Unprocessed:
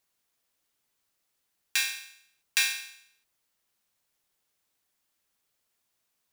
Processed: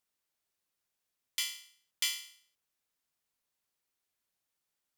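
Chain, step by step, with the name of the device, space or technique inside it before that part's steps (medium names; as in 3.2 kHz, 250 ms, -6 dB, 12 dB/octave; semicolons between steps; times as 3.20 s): nightcore (tape speed +27%); trim -6.5 dB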